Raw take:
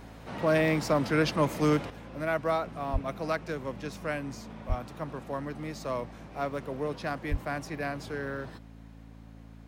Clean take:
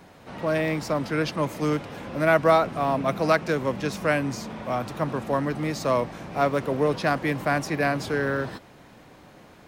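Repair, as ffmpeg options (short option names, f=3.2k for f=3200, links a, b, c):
-filter_complex "[0:a]bandreject=f=55.2:t=h:w=4,bandreject=f=110.4:t=h:w=4,bandreject=f=165.6:t=h:w=4,bandreject=f=220.8:t=h:w=4,bandreject=f=276:t=h:w=4,asplit=3[a][b][c];[a]afade=t=out:st=2.92:d=0.02[d];[b]highpass=f=140:w=0.5412,highpass=f=140:w=1.3066,afade=t=in:st=2.92:d=0.02,afade=t=out:st=3.04:d=0.02[e];[c]afade=t=in:st=3.04:d=0.02[f];[d][e][f]amix=inputs=3:normalize=0,asplit=3[g][h][i];[g]afade=t=out:st=4.68:d=0.02[j];[h]highpass=f=140:w=0.5412,highpass=f=140:w=1.3066,afade=t=in:st=4.68:d=0.02,afade=t=out:st=4.8:d=0.02[k];[i]afade=t=in:st=4.8:d=0.02[l];[j][k][l]amix=inputs=3:normalize=0,asplit=3[m][n][o];[m]afade=t=out:st=7.3:d=0.02[p];[n]highpass=f=140:w=0.5412,highpass=f=140:w=1.3066,afade=t=in:st=7.3:d=0.02,afade=t=out:st=7.42:d=0.02[q];[o]afade=t=in:st=7.42:d=0.02[r];[p][q][r]amix=inputs=3:normalize=0,asetnsamples=n=441:p=0,asendcmd='1.9 volume volume 10dB',volume=0dB"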